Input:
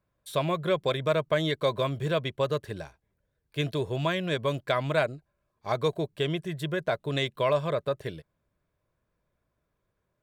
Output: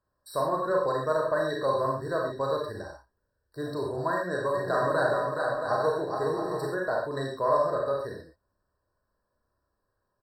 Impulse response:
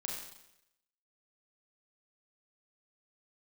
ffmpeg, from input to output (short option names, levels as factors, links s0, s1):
-filter_complex "[0:a]equalizer=f=160:t=o:w=0.67:g=-10,equalizer=f=1000:t=o:w=0.67:g=4,equalizer=f=6300:t=o:w=0.67:g=5,asplit=3[s0][s1][s2];[s0]afade=t=out:st=4.53:d=0.02[s3];[s1]aecho=1:1:420|672|823.2|913.9|968.4:0.631|0.398|0.251|0.158|0.1,afade=t=in:st=4.53:d=0.02,afade=t=out:st=6.66:d=0.02[s4];[s2]afade=t=in:st=6.66:d=0.02[s5];[s3][s4][s5]amix=inputs=3:normalize=0[s6];[1:a]atrim=start_sample=2205,afade=t=out:st=0.19:d=0.01,atrim=end_sample=8820[s7];[s6][s7]afir=irnorm=-1:irlink=0,afftfilt=real='re*eq(mod(floor(b*sr/1024/1900),2),0)':imag='im*eq(mod(floor(b*sr/1024/1900),2),0)':win_size=1024:overlap=0.75"